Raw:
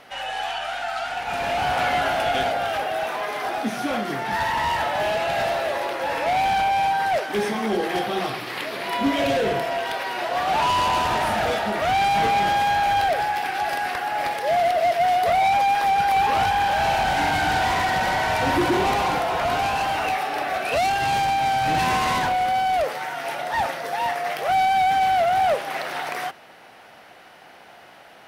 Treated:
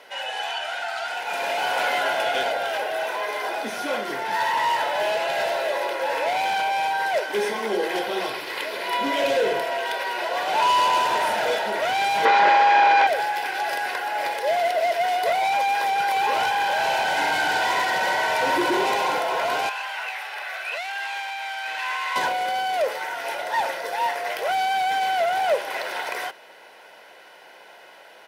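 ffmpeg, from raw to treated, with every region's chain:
-filter_complex "[0:a]asettb=1/sr,asplit=3[s0][s1][s2];[s0]atrim=end=1.084[s3];[s1]atrim=start=1.08:end=2.03,asetpts=PTS-STARTPTS,afade=t=in:d=0.004:c=qsin,afade=t=out:st=0.946:d=0.004:c=qsin,highpass=160,highshelf=f=10000:g=5.5[s4];[s2]atrim=start=2.026[s5];[s3][s4]acrossfade=d=0.004:c1=hsin:c2=qsin[s6];[s6][s5]acrossfade=d=0.004:c1=qsin:c2=hsin,asettb=1/sr,asplit=3[s7][s8][s9];[s7]atrim=end=12.254[s10];[s8]atrim=start=12.25:end=13.07,asetpts=PTS-STARTPTS,afade=t=in:d=0.004:c=qsin,afade=t=out:st=0.816:d=0.004:c=qsin,aeval=exprs='0.316*sin(PI/2*2.82*val(0)/0.316)':c=same,highpass=240,lowpass=2300[s11];[s9]atrim=start=13.066[s12];[s10][s11]acrossfade=d=0.004:c1=hsin:c2=qsin[s13];[s13][s12]acrossfade=d=0.004:c1=qsin:c2=hsin,asettb=1/sr,asplit=3[s14][s15][s16];[s14]atrim=end=19.694[s17];[s15]atrim=start=19.69:end=22.16,asetpts=PTS-STARTPTS,afade=t=in:d=0.004:c=qsin,afade=t=out:st=2.466:d=0.004:c=qsin,highpass=1300,acrossover=split=3100[s18][s19];[s19]acompressor=threshold=0.00631:ratio=4:attack=1:release=60[s20];[s18][s20]amix=inputs=2:normalize=0[s21];[s16]atrim=start=22.156[s22];[s17][s21]acrossfade=d=0.004:c1=hsin:c2=qsin[s23];[s23][s22]acrossfade=d=0.004:c1=qsin:c2=hsin,highpass=310,bandreject=f=1200:w=8.5,aecho=1:1:2:0.39"

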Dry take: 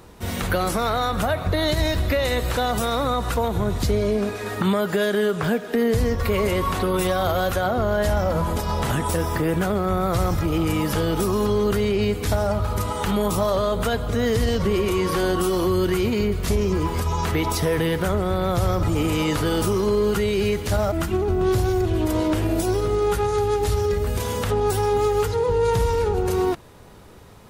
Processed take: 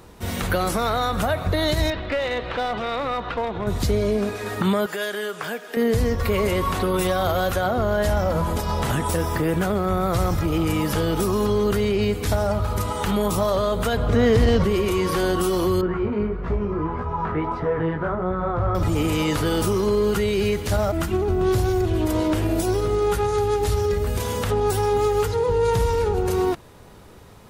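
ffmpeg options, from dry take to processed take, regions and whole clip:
-filter_complex "[0:a]asettb=1/sr,asplit=3[s0][s1][s2];[s0]atrim=end=1.904[s3];[s1]atrim=start=1.9:end=3.67,asetpts=PTS-STARTPTS,afade=t=in:d=0.004:c=qsin,afade=t=out:st=1.766:d=0.004:c=qsin,lowpass=f=3500:w=0.5412,lowpass=f=3500:w=1.3066,equalizer=f=67:w=0.43:g=-12,aeval=exprs='clip(val(0),-1,0.0891)':c=same[s4];[s2]atrim=start=3.666[s5];[s3][s4]acrossfade=d=0.004:c1=hsin:c2=qsin[s6];[s6][s5]acrossfade=d=0.004:c1=qsin:c2=hsin,asettb=1/sr,asplit=3[s7][s8][s9];[s7]atrim=end=4.864[s10];[s8]atrim=start=4.86:end=5.77,asetpts=PTS-STARTPTS,afade=t=in:d=0.004:c=qsin,afade=t=out:st=0.906:d=0.004:c=qsin,highpass=f=1000:p=1,bandreject=f=3900:w=16[s11];[s9]atrim=start=5.766[s12];[s10][s11]acrossfade=d=0.004:c1=hsin:c2=qsin[s13];[s13][s12]acrossfade=d=0.004:c1=qsin:c2=hsin,asettb=1/sr,asplit=3[s14][s15][s16];[s14]atrim=end=13.974[s17];[s15]atrim=start=13.97:end=14.64,asetpts=PTS-STARTPTS,afade=t=in:d=0.004:c=qsin,afade=t=out:st=0.666:d=0.004:c=qsin,lowpass=f=2600:p=1,acontrast=22,asoftclip=type=hard:threshold=0.282[s18];[s16]atrim=start=14.636[s19];[s17][s18]acrossfade=d=0.004:c1=hsin:c2=qsin[s20];[s20][s19]acrossfade=d=0.004:c1=qsin:c2=hsin,asettb=1/sr,asplit=3[s21][s22][s23];[s21]atrim=end=15.814[s24];[s22]atrim=start=15.81:end=18.75,asetpts=PTS-STARTPTS,afade=t=in:d=0.004:c=qsin,afade=t=out:st=2.936:d=0.004:c=qsin,lowpass=f=1300:t=q:w=1.7,flanger=delay=16.5:depth=3.1:speed=1.6[s25];[s23]atrim=start=18.746[s26];[s24][s25]acrossfade=d=0.004:c1=hsin:c2=qsin[s27];[s27][s26]acrossfade=d=0.004:c1=qsin:c2=hsin"

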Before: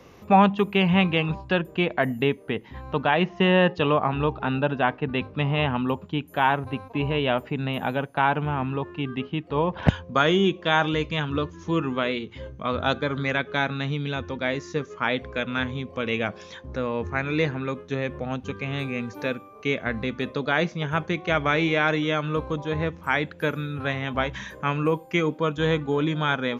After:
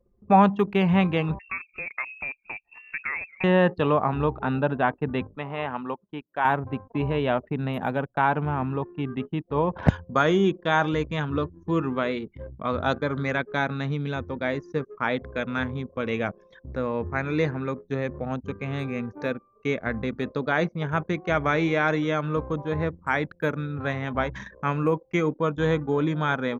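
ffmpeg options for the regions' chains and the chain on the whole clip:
-filter_complex "[0:a]asettb=1/sr,asplit=3[s0][s1][s2];[s0]atrim=end=1.394[s3];[s1]atrim=start=1.39:end=3.44,asetpts=PTS-STARTPTS,afade=t=in:d=0.004:c=qsin,afade=t=out:st=2.046:d=0.004:c=qsin,asplit=4[s4][s5][s6][s7];[s5]adelay=224,afreqshift=-140,volume=0.0944[s8];[s6]adelay=448,afreqshift=-280,volume=0.0367[s9];[s7]adelay=672,afreqshift=-420,volume=0.0143[s10];[s4][s8][s9][s10]amix=inputs=4:normalize=0,atrim=end_sample=90405,acrossover=split=410|970[s11][s12][s13];[s11]acompressor=threshold=0.02:ratio=4[s14];[s12]acompressor=threshold=0.0447:ratio=4[s15];[s13]acompressor=threshold=0.0126:ratio=4[s16];[s14][s15][s16]amix=inputs=3:normalize=0,lowpass=f=2400:t=q:w=0.5098,lowpass=f=2400:t=q:w=0.6013,lowpass=f=2400:t=q:w=0.9,lowpass=f=2400:t=q:w=2.563,afreqshift=-2800[s17];[s2]atrim=start=3.436[s18];[s3][s17]acrossfade=d=0.004:c1=hsin:c2=qsin[s19];[s19][s18]acrossfade=d=0.004:c1=qsin:c2=hsin,asettb=1/sr,asplit=3[s20][s21][s22];[s20]atrim=end=5.364[s23];[s21]atrim=start=5.36:end=6.45,asetpts=PTS-STARTPTS,afade=t=in:d=0.004:c=qsin,afade=t=out:st=1.086:d=0.004:c=qsin,highpass=f=650:p=1,acrossover=split=3600[s24][s25];[s25]acompressor=threshold=0.00316:ratio=4:attack=1:release=60[s26];[s24][s26]amix=inputs=2:normalize=0,highshelf=f=3600:g=-3.5[s27];[s22]atrim=start=6.446[s28];[s23][s27]acrossfade=d=0.004:c1=hsin:c2=qsin[s29];[s29][s28]acrossfade=d=0.004:c1=qsin:c2=hsin,anlmdn=2.51,equalizer=f=3000:t=o:w=0.74:g=-9"

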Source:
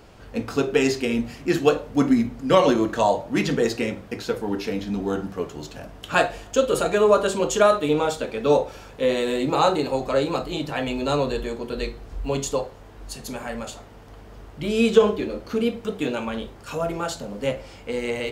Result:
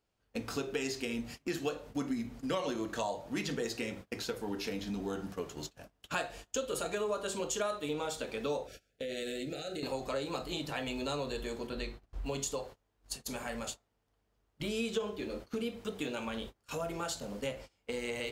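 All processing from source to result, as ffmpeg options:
-filter_complex "[0:a]asettb=1/sr,asplit=3[s0][s1][s2];[s0]atrim=end=8.674[s3];[s1]atrim=start=8.67:end=9.83,asetpts=PTS-STARTPTS,afade=t=in:d=0.004:c=qsin,afade=t=out:st=1.156:d=0.004:c=qsin,acompressor=threshold=0.0501:ratio=12:attack=3.2:release=140:knee=1:detection=peak,asuperstop=centerf=1000:order=8:qfactor=1.5[s4];[s2]atrim=start=9.826[s5];[s3][s4]acrossfade=d=0.004:c1=hsin:c2=qsin[s6];[s6][s5]acrossfade=d=0.004:c1=qsin:c2=hsin,asettb=1/sr,asplit=3[s7][s8][s9];[s7]atrim=end=11.674[s10];[s8]atrim=start=11.67:end=12.26,asetpts=PTS-STARTPTS,afade=t=in:d=0.004:c=qsin,afade=t=out:st=0.586:d=0.004:c=qsin,highshelf=f=4200:g=-8.5,bandreject=f=450:w=6.8[s11];[s9]atrim=start=12.256[s12];[s10][s11]acrossfade=d=0.004:c1=hsin:c2=qsin[s13];[s13][s12]acrossfade=d=0.004:c1=qsin:c2=hsin,agate=range=0.0447:threshold=0.0178:ratio=16:detection=peak,highshelf=f=2600:g=8,acompressor=threshold=0.0447:ratio=3,volume=0.422"

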